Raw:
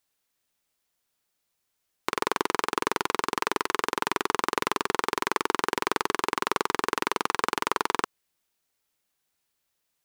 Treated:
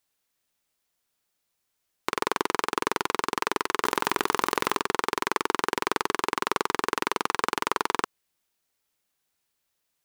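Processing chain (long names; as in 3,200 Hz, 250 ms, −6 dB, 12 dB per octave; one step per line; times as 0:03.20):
0:03.85–0:04.79: envelope flattener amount 100%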